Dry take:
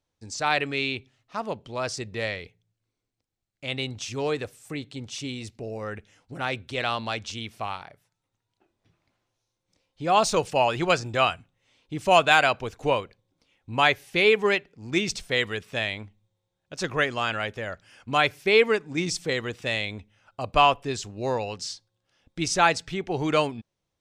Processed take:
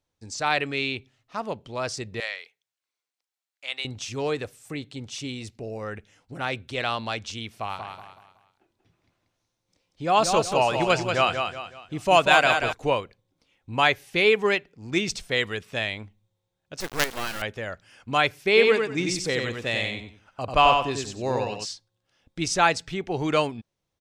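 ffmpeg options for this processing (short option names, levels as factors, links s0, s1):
-filter_complex "[0:a]asettb=1/sr,asplit=3[s0][s1][s2];[s0]atrim=end=2.204[s3];[s1]atrim=start=2.2:end=3.85,asetpts=PTS-STARTPTS,afade=t=in:d=0.004:c=qsin,afade=t=out:st=1.646:d=0.004:c=qsin,highpass=930[s4];[s2]atrim=start=3.846[s5];[s3][s4]acrossfade=d=0.004:c1=hsin:c2=qsin[s6];[s6][s5]acrossfade=d=0.004:c1=qsin:c2=hsin,asettb=1/sr,asplit=3[s7][s8][s9];[s7]atrim=end=7.504[s10];[s8]atrim=start=7.5:end=12.73,asetpts=PTS-STARTPTS,afade=t=in:d=0.004:c=qsin,afade=t=out:st=5.226:d=0.004:c=qsin,aecho=1:1:186|372|558|744:0.501|0.185|0.0686|0.0254,atrim=end_sample=230643[s11];[s9]atrim=start=12.726[s12];[s10][s11]acrossfade=d=0.004:c1=hsin:c2=qsin[s13];[s13][s12]acrossfade=d=0.004:c1=qsin:c2=hsin,asettb=1/sr,asplit=3[s14][s15][s16];[s14]atrim=end=16.804[s17];[s15]atrim=start=16.8:end=17.42,asetpts=PTS-STARTPTS,afade=t=in:d=0.004:c=qsin,afade=t=out:st=0.616:d=0.004:c=qsin,acrusher=bits=3:dc=4:mix=0:aa=0.000001[s18];[s16]atrim=start=17.416[s19];[s17][s18]acrossfade=d=0.004:c1=hsin:c2=qsin[s20];[s20][s19]acrossfade=d=0.004:c1=qsin:c2=hsin,asplit=3[s21][s22][s23];[s21]afade=t=out:st=18.56:d=0.02[s24];[s22]aecho=1:1:93|186|279:0.631|0.158|0.0394,afade=t=in:st=18.56:d=0.02,afade=t=out:st=21.64:d=0.02[s25];[s23]afade=t=in:st=21.64:d=0.02[s26];[s24][s25][s26]amix=inputs=3:normalize=0"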